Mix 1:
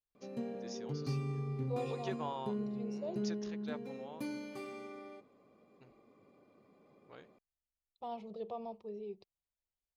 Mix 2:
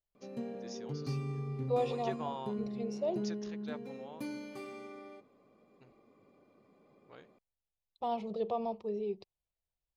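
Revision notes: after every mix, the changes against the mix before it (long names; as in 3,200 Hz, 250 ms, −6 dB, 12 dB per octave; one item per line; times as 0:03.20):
second voice +8.0 dB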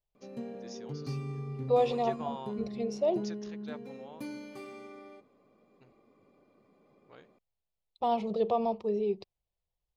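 second voice +6.0 dB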